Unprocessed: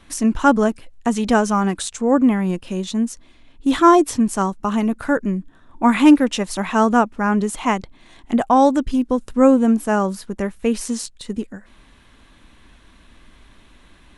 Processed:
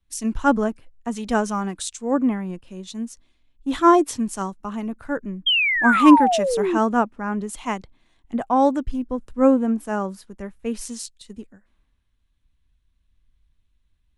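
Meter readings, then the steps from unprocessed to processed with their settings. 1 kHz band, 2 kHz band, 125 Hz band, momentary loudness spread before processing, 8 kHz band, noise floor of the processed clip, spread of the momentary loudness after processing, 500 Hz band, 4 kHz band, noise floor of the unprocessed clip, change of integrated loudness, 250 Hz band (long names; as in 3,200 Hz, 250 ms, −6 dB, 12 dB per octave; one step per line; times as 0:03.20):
−2.5 dB, +2.0 dB, can't be measured, 12 LU, −4.0 dB, −67 dBFS, 17 LU, −3.5 dB, +4.5 dB, −51 dBFS, −2.5 dB, −4.5 dB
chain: sound drawn into the spectrogram fall, 0:05.46–0:06.78, 310–3,300 Hz −15 dBFS
floating-point word with a short mantissa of 8 bits
multiband upward and downward expander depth 70%
level −6.5 dB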